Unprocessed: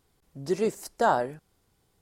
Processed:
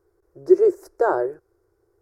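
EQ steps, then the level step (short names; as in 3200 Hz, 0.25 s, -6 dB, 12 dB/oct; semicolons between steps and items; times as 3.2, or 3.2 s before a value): EQ curve 110 Hz 0 dB, 230 Hz -26 dB, 350 Hz +15 dB, 780 Hz -2 dB, 1500 Hz +2 dB, 3100 Hz -24 dB, 5400 Hz -8 dB, 8000 Hz -12 dB, 13000 Hz -8 dB; 0.0 dB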